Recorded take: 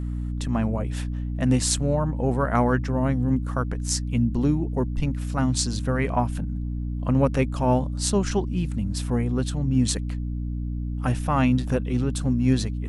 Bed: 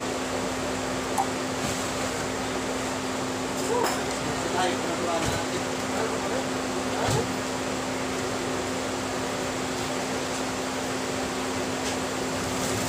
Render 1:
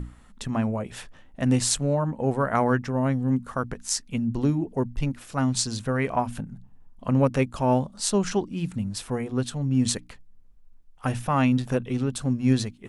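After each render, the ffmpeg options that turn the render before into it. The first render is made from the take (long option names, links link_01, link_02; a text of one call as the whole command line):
ffmpeg -i in.wav -af "bandreject=frequency=60:width_type=h:width=6,bandreject=frequency=120:width_type=h:width=6,bandreject=frequency=180:width_type=h:width=6,bandreject=frequency=240:width_type=h:width=6,bandreject=frequency=300:width_type=h:width=6" out.wav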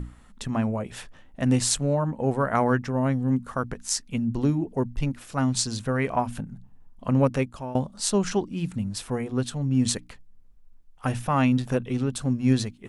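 ffmpeg -i in.wav -filter_complex "[0:a]asplit=2[link_01][link_02];[link_01]atrim=end=7.75,asetpts=PTS-STARTPTS,afade=type=out:start_time=7.29:duration=0.46:silence=0.105925[link_03];[link_02]atrim=start=7.75,asetpts=PTS-STARTPTS,afade=type=in:duration=0.004:curve=hsin:silence=0.105925[link_04];[link_03][link_04]concat=n=2:v=0:a=1" out.wav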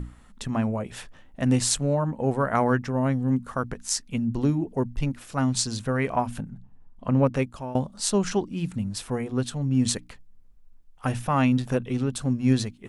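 ffmpeg -i in.wav -filter_complex "[0:a]asettb=1/sr,asplit=3[link_01][link_02][link_03];[link_01]atrim=end=6.494[link_04];[link_02]atrim=start=6.49:end=7.36,asetpts=PTS-STARTPTS,afade=type=in:duration=0.004:curve=qsin,afade=type=out:start_time=0.866:duration=0.004:curve=qsin,highshelf=frequency=5300:gain=-11[link_05];[link_03]atrim=start=7.356[link_06];[link_04][link_05]acrossfade=duration=0.004:curve1=hsin:curve2=qsin[link_07];[link_07][link_06]acrossfade=duration=0.004:curve1=qsin:curve2=hsin" out.wav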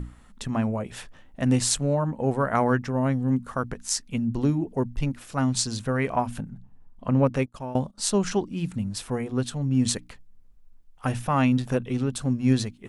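ffmpeg -i in.wav -filter_complex "[0:a]asettb=1/sr,asplit=3[link_01][link_02][link_03];[link_01]atrim=end=7.464[link_04];[link_02]atrim=start=7.46:end=7.98,asetpts=PTS-STARTPTS,afade=type=in:duration=0.004:curve=qsin,afade=type=out:start_time=0.516:duration=0.004:curve=qsin,agate=range=-17dB:threshold=-44dB:ratio=16:release=100:detection=peak[link_05];[link_03]atrim=start=7.976[link_06];[link_04][link_05]acrossfade=duration=0.004:curve1=hsin:curve2=qsin[link_07];[link_07][link_06]acrossfade=duration=0.004:curve1=qsin:curve2=hsin" out.wav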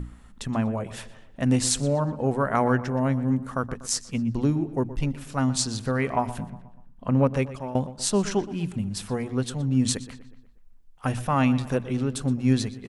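ffmpeg -i in.wav -filter_complex "[0:a]asplit=2[link_01][link_02];[link_02]adelay=121,lowpass=frequency=3800:poles=1,volume=-15dB,asplit=2[link_03][link_04];[link_04]adelay=121,lowpass=frequency=3800:poles=1,volume=0.52,asplit=2[link_05][link_06];[link_06]adelay=121,lowpass=frequency=3800:poles=1,volume=0.52,asplit=2[link_07][link_08];[link_08]adelay=121,lowpass=frequency=3800:poles=1,volume=0.52,asplit=2[link_09][link_10];[link_10]adelay=121,lowpass=frequency=3800:poles=1,volume=0.52[link_11];[link_01][link_03][link_05][link_07][link_09][link_11]amix=inputs=6:normalize=0" out.wav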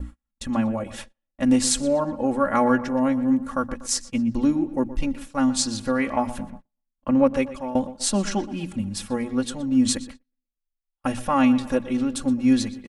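ffmpeg -i in.wav -af "agate=range=-39dB:threshold=-38dB:ratio=16:detection=peak,aecho=1:1:3.6:0.83" out.wav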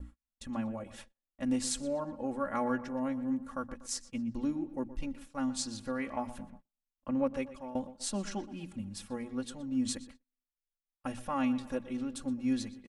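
ffmpeg -i in.wav -af "volume=-12.5dB" out.wav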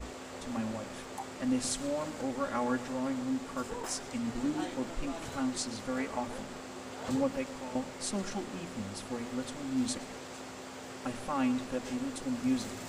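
ffmpeg -i in.wav -i bed.wav -filter_complex "[1:a]volume=-15.5dB[link_01];[0:a][link_01]amix=inputs=2:normalize=0" out.wav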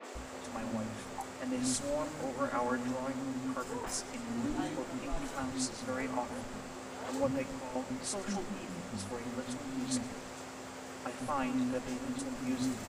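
ffmpeg -i in.wav -filter_complex "[0:a]acrossover=split=280|3700[link_01][link_02][link_03];[link_03]adelay=30[link_04];[link_01]adelay=150[link_05];[link_05][link_02][link_04]amix=inputs=3:normalize=0" out.wav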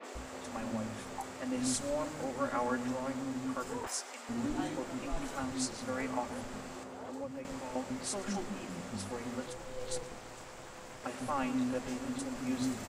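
ffmpeg -i in.wav -filter_complex "[0:a]asettb=1/sr,asplit=3[link_01][link_02][link_03];[link_01]atrim=end=3.874[link_04];[link_02]atrim=start=3.87:end=4.29,asetpts=PTS-STARTPTS,afade=type=in:duration=0.004:curve=qsin,afade=type=out:start_time=0.416:duration=0.004:curve=qsin,highpass=590[link_05];[link_03]atrim=start=4.286[link_06];[link_04][link_05]acrossfade=duration=0.004:curve1=hsin:curve2=qsin[link_07];[link_07][link_06]acrossfade=duration=0.004:curve1=qsin:curve2=hsin,asettb=1/sr,asplit=3[link_08][link_09][link_10];[link_08]atrim=end=6.834[link_11];[link_09]atrim=start=6.83:end=7.45,asetpts=PTS-STARTPTS,afade=type=in:duration=0.004:curve=qsin,afade=type=out:start_time=0.616:duration=0.004:curve=qsin,acrossover=split=210|550|1200[link_12][link_13][link_14][link_15];[link_12]acompressor=threshold=-56dB:ratio=3[link_16];[link_13]acompressor=threshold=-46dB:ratio=3[link_17];[link_14]acompressor=threshold=-49dB:ratio=3[link_18];[link_15]acompressor=threshold=-60dB:ratio=3[link_19];[link_16][link_17][link_18][link_19]amix=inputs=4:normalize=0[link_20];[link_10]atrim=start=7.446[link_21];[link_11][link_20]acrossfade=duration=0.004:curve1=hsin:curve2=qsin[link_22];[link_22][link_21]acrossfade=duration=0.004:curve1=qsin:curve2=hsin,asettb=1/sr,asplit=3[link_23][link_24][link_25];[link_23]atrim=end=9.464[link_26];[link_24]atrim=start=9.46:end=11.04,asetpts=PTS-STARTPTS,afade=type=in:duration=0.004:curve=qsin,afade=type=out:start_time=1.576:duration=0.004:curve=qsin,aeval=exprs='val(0)*sin(2*PI*250*n/s)':channel_layout=same[link_27];[link_25]atrim=start=11.036[link_28];[link_26][link_27]acrossfade=duration=0.004:curve1=hsin:curve2=qsin[link_29];[link_29][link_28]acrossfade=duration=0.004:curve1=qsin:curve2=hsin" out.wav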